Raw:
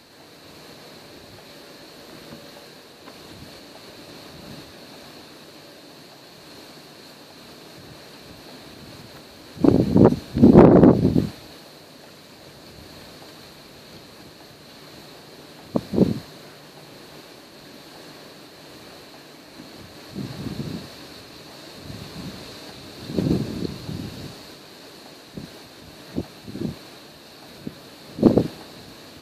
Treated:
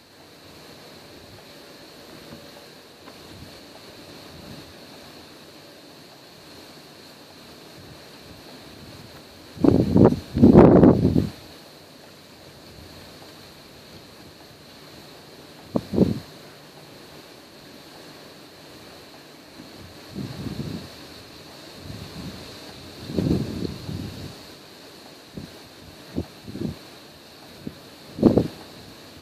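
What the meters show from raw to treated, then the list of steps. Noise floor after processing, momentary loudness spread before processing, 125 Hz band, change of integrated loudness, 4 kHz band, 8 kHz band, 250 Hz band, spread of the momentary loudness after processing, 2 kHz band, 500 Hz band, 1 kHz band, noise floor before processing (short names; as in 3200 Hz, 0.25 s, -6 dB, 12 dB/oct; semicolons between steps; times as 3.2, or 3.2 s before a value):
-47 dBFS, 25 LU, 0.0 dB, -1.0 dB, -1.0 dB, n/a, -1.0 dB, 25 LU, -1.0 dB, -1.0 dB, -1.0 dB, -46 dBFS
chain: bell 87 Hz +5 dB 0.43 oct; gain -1 dB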